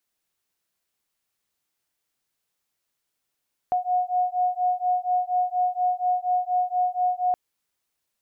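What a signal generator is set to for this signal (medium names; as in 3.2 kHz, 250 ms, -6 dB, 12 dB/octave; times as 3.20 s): beating tones 724 Hz, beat 4.2 Hz, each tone -24 dBFS 3.62 s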